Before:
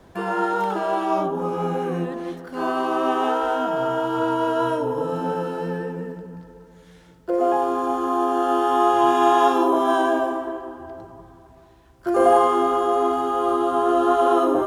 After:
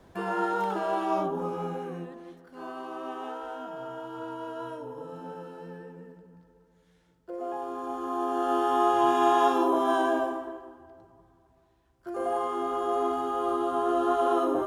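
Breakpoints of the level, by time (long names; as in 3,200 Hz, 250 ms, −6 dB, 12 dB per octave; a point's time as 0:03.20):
0:01.36 −5.5 dB
0:02.27 −15.5 dB
0:07.39 −15.5 dB
0:08.55 −5.5 dB
0:10.21 −5.5 dB
0:10.88 −14.5 dB
0:12.27 −14.5 dB
0:12.95 −7 dB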